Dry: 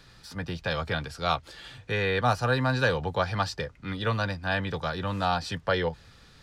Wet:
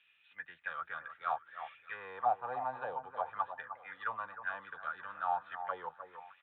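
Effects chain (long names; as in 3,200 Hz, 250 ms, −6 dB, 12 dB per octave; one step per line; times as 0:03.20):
downsampling to 8,000 Hz
envelope filter 760–2,700 Hz, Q 7.2, down, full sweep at −20.5 dBFS
delay that swaps between a low-pass and a high-pass 307 ms, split 1,400 Hz, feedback 51%, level −9.5 dB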